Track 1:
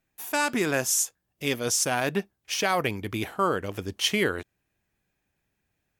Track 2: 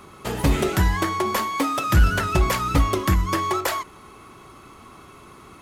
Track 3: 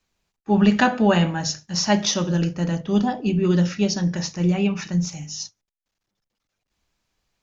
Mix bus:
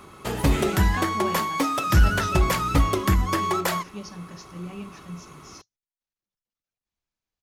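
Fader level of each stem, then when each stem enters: muted, −1.0 dB, −16.5 dB; muted, 0.00 s, 0.15 s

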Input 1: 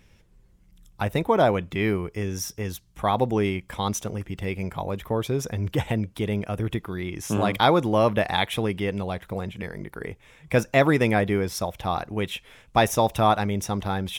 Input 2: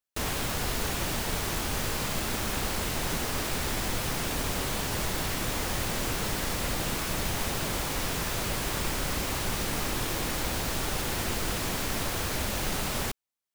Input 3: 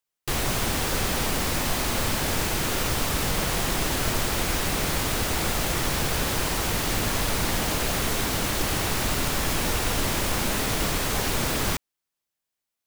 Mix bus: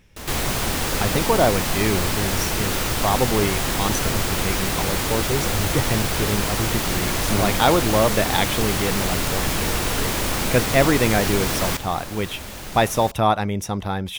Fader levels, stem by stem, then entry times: +1.5, −4.5, +2.0 decibels; 0.00, 0.00, 0.00 seconds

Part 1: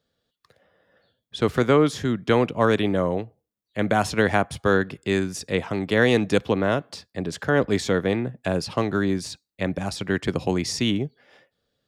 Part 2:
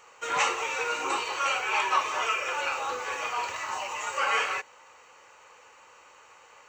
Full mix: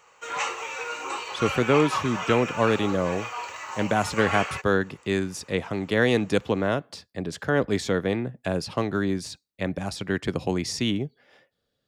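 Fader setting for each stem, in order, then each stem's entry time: −2.5, −3.0 decibels; 0.00, 0.00 seconds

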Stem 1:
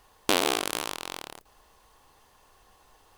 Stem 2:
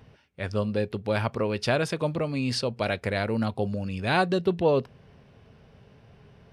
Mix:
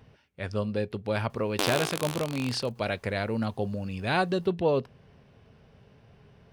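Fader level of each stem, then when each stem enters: −5.0, −2.5 decibels; 1.30, 0.00 seconds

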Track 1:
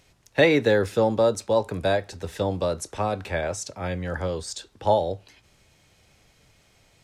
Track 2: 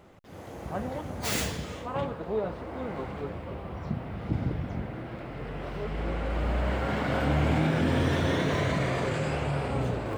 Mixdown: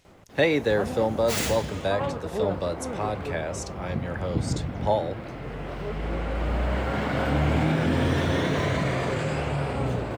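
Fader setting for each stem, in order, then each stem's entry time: −3.5, +2.0 decibels; 0.00, 0.05 seconds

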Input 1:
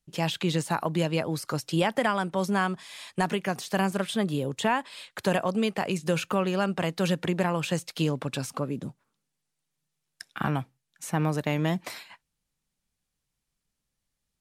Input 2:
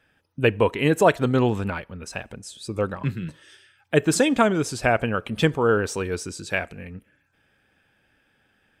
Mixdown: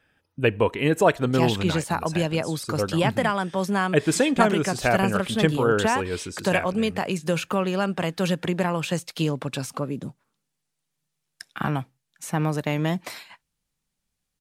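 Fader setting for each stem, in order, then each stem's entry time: +2.0, −1.5 decibels; 1.20, 0.00 seconds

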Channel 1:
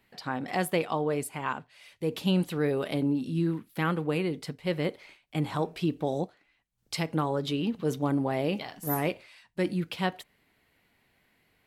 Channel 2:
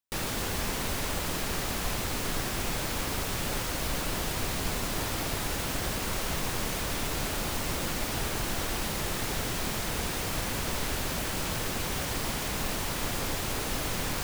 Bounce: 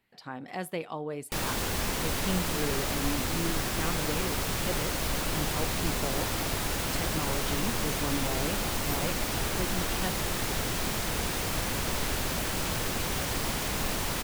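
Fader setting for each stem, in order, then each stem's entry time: −7.0, +1.0 decibels; 0.00, 1.20 seconds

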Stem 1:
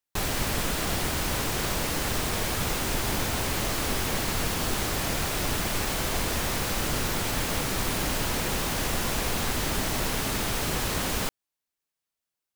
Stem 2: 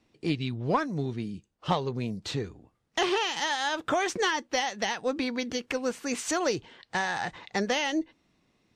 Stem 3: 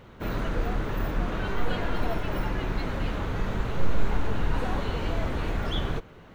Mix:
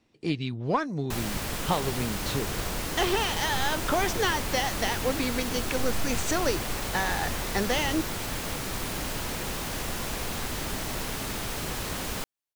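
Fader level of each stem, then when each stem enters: −4.5, 0.0, −10.5 decibels; 0.95, 0.00, 2.00 seconds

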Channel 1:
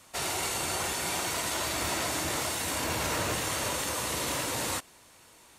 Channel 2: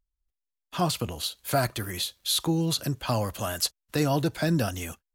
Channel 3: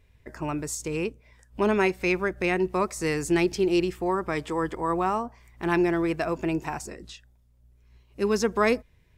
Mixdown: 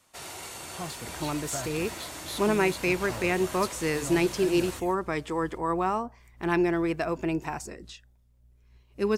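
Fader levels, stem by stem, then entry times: −9.0, −12.5, −1.5 decibels; 0.00, 0.00, 0.80 seconds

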